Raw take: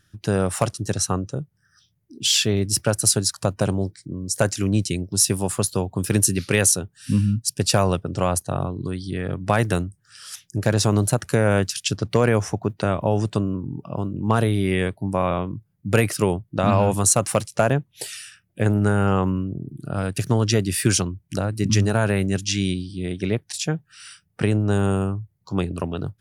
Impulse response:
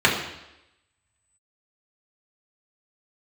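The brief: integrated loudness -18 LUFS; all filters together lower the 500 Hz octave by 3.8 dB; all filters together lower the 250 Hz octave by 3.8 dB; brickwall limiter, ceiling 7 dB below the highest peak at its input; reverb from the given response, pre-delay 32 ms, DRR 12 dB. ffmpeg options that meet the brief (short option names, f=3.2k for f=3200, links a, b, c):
-filter_complex "[0:a]equalizer=f=250:t=o:g=-4.5,equalizer=f=500:t=o:g=-3.5,alimiter=limit=-12dB:level=0:latency=1,asplit=2[a][b];[1:a]atrim=start_sample=2205,adelay=32[c];[b][c]afir=irnorm=-1:irlink=0,volume=-33dB[d];[a][d]amix=inputs=2:normalize=0,volume=7.5dB"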